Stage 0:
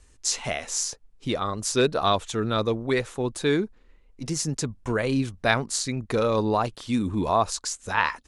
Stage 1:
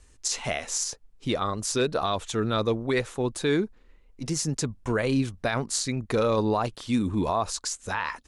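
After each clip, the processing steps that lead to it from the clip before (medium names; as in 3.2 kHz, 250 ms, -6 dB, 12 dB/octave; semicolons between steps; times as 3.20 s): peak limiter -15 dBFS, peak gain reduction 10 dB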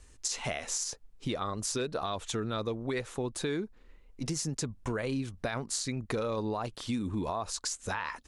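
compression 4:1, threshold -31 dBFS, peak gain reduction 9.5 dB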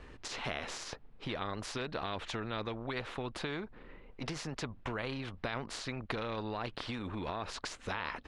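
distance through air 390 m; spectrum-flattening compressor 2:1; trim +2.5 dB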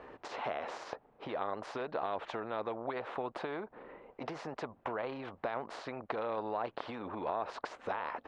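compression 2:1, threshold -41 dBFS, peak gain reduction 5.5 dB; band-pass filter 700 Hz, Q 1.3; trim +10 dB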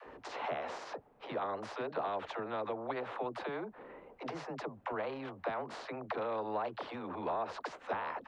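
phase dispersion lows, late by 70 ms, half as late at 320 Hz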